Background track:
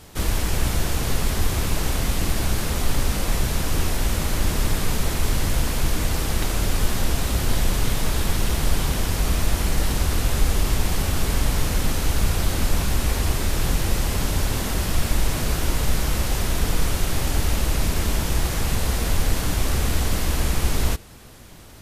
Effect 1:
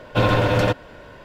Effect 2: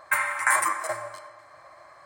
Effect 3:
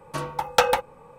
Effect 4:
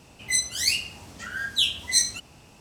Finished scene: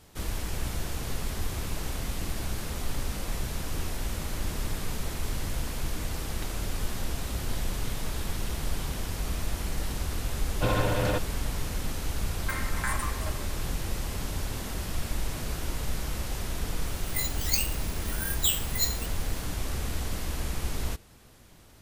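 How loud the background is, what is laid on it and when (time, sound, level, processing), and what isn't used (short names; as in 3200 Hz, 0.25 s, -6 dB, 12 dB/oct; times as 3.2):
background track -10 dB
10.46 add 1 -9 dB
12.37 add 2 -11 dB
16.86 add 4 -9 dB + careless resampling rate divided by 4×, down filtered, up zero stuff
not used: 3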